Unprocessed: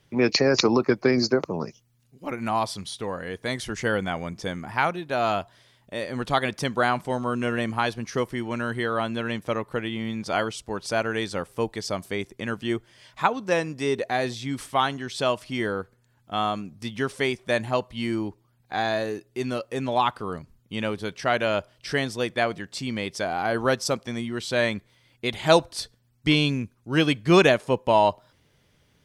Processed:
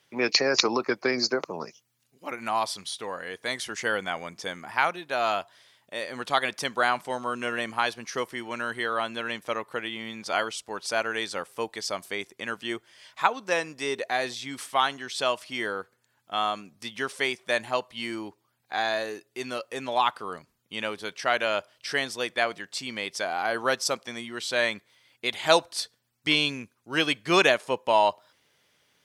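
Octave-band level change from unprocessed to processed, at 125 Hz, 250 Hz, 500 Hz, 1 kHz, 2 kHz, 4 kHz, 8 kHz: −14.0, −8.5, −4.0, −1.0, +0.5, +1.5, +1.5 decibels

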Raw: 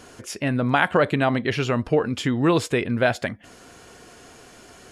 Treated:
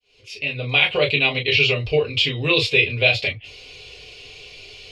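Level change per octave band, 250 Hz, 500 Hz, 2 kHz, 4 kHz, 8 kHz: −8.5, +0.5, +7.5, +14.0, −5.5 decibels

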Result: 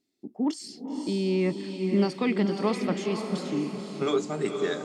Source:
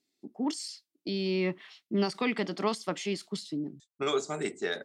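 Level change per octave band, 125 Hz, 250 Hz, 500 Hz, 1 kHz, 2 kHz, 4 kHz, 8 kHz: +6.5, +6.0, +4.5, +1.5, −0.5, −1.0, −1.0 decibels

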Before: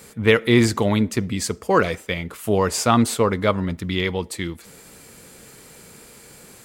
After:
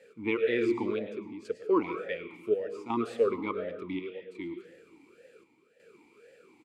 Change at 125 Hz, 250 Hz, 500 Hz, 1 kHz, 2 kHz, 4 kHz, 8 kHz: −24.5 dB, −11.5 dB, −8.0 dB, −14.0 dB, −14.0 dB, −20.5 dB, below −30 dB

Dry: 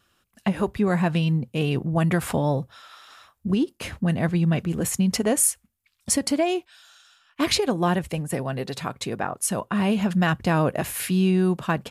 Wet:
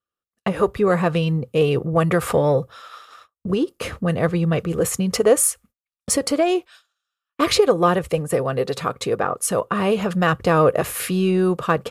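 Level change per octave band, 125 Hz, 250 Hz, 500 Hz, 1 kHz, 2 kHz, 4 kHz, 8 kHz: +0.5, +0.5, +8.5, +5.5, +3.0, +2.0, +1.5 decibels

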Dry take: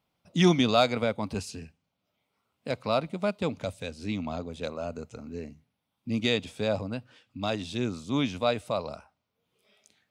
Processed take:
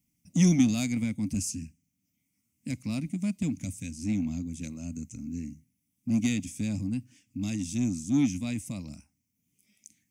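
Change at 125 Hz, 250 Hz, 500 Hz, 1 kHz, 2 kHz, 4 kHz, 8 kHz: +2.5 dB, +3.0 dB, −17.0 dB, below −15 dB, −7.0 dB, −10.0 dB, +9.0 dB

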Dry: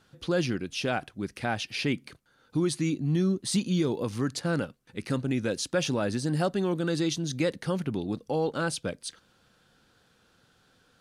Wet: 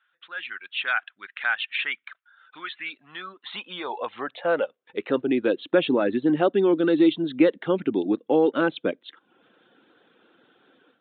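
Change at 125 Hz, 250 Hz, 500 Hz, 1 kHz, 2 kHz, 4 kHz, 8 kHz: −10.0 dB, +4.0 dB, +7.0 dB, +5.0 dB, +7.5 dB, +1.5 dB, below −40 dB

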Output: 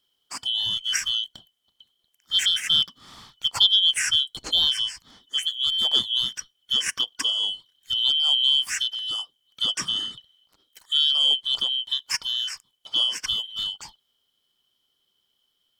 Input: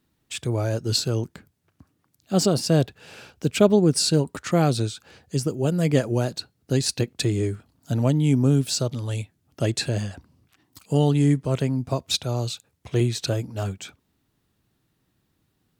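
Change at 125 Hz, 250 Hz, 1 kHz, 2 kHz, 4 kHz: below −30 dB, −27.0 dB, −8.5 dB, +3.5 dB, +13.0 dB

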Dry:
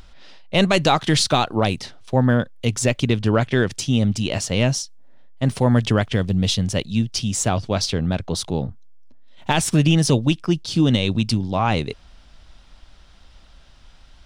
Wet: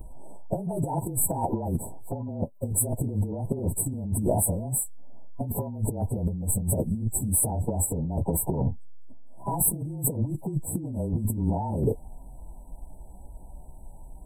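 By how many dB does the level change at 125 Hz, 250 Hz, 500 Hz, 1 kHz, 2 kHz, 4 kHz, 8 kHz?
−7.5 dB, −10.0 dB, −9.5 dB, −10.0 dB, below −40 dB, below −40 dB, 0.0 dB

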